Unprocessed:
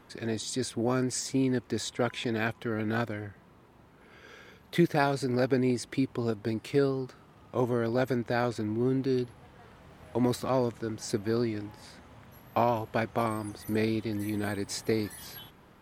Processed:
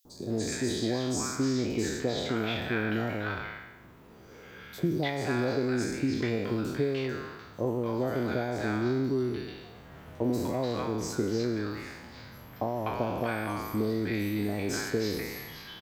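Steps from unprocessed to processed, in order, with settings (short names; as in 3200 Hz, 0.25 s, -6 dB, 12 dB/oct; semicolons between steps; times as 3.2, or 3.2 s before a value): spectral trails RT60 0.98 s; compressor, threshold -26 dBFS, peak gain reduction 9 dB; requantised 12-bit, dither triangular; bell 9500 Hz -14 dB 0.33 oct; three bands offset in time highs, lows, mids 50/300 ms, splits 860/4900 Hz; gain +2 dB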